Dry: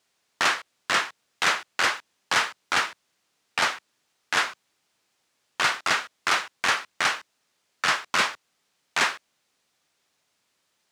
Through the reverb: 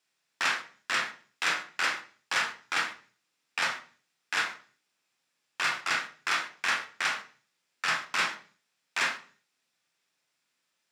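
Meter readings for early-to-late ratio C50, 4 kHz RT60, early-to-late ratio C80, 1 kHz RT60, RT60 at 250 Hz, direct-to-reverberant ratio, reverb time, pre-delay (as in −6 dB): 13.0 dB, 0.50 s, 17.5 dB, 0.40 s, 0.50 s, 5.0 dB, 0.40 s, 24 ms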